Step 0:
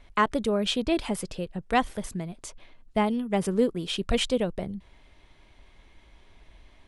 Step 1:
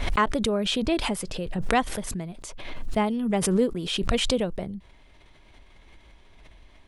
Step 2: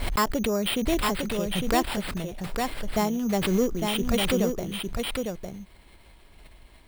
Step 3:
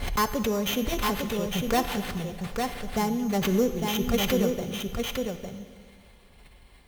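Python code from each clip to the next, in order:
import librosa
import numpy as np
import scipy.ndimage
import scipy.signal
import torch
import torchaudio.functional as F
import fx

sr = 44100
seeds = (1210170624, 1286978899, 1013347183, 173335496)

y1 = fx.pre_swell(x, sr, db_per_s=38.0)
y2 = fx.tube_stage(y1, sr, drive_db=14.0, bias=0.2)
y2 = fx.sample_hold(y2, sr, seeds[0], rate_hz=6300.0, jitter_pct=0)
y2 = y2 + 10.0 ** (-4.5 / 20.0) * np.pad(y2, (int(855 * sr / 1000.0), 0))[:len(y2)]
y3 = fx.tracing_dist(y2, sr, depth_ms=0.11)
y3 = fx.notch_comb(y3, sr, f0_hz=320.0)
y3 = fx.rev_plate(y3, sr, seeds[1], rt60_s=2.1, hf_ratio=1.0, predelay_ms=0, drr_db=10.5)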